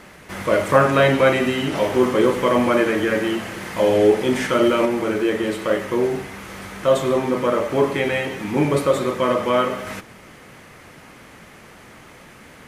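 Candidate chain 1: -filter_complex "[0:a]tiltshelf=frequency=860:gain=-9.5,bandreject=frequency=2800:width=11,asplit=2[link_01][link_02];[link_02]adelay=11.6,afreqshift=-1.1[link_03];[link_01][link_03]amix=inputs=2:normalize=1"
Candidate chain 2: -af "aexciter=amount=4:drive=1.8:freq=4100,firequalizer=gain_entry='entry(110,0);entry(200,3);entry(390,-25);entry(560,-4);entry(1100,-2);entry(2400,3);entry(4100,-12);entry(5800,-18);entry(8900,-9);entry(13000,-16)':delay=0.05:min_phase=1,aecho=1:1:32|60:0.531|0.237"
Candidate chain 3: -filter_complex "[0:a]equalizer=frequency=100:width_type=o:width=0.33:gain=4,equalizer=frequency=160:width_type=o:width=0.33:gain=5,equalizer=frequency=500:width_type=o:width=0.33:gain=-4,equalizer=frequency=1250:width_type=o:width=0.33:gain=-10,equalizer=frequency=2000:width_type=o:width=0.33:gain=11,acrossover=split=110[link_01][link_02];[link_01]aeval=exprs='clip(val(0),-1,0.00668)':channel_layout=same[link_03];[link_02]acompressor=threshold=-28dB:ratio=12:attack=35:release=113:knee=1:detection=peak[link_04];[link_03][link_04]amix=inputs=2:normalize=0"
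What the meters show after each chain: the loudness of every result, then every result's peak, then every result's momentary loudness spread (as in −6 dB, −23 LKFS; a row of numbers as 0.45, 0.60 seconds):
−23.0, −22.5, −28.0 LKFS; −5.0, −4.0, −12.5 dBFS; 23, 15, 13 LU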